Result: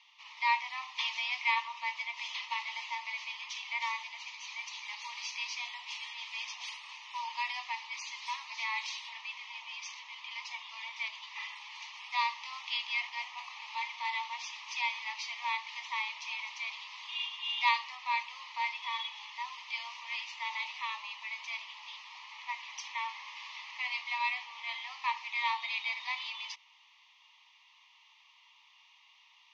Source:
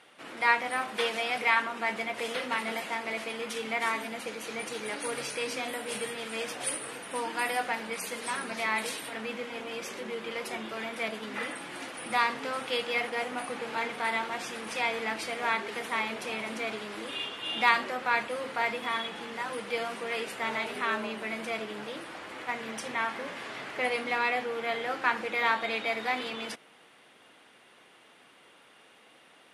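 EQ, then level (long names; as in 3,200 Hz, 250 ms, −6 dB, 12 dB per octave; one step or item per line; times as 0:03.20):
Chebyshev band-pass filter 920–6,300 Hz, order 5
Butterworth band-reject 1,500 Hz, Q 1.4
0.0 dB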